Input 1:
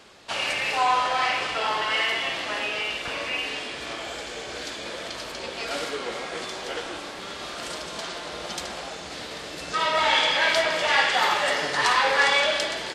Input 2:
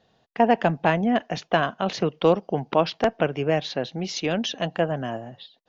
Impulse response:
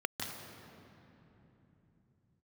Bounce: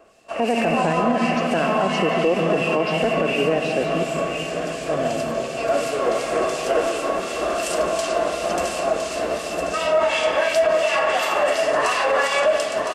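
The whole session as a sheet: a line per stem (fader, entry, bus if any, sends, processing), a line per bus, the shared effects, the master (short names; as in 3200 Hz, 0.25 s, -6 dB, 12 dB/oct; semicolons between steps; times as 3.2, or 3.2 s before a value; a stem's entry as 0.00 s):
-1.0 dB, 0.00 s, send -11.5 dB, echo send -7 dB, small resonant body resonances 660/1100/2700 Hz, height 14 dB, ringing for 45 ms; harmonic tremolo 2.8 Hz, depth 70%, crossover 2100 Hz; AGC gain up to 14 dB; auto duck -7 dB, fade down 1.70 s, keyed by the second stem
+2.0 dB, 0.00 s, muted 4.03–4.88, send -5.5 dB, no echo send, dry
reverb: on, RT60 3.3 s, pre-delay 0.147 s
echo: echo 1.01 s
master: graphic EQ 125/1000/2000/4000 Hz -9/-7/-6/-10 dB; limiter -10 dBFS, peak gain reduction 7.5 dB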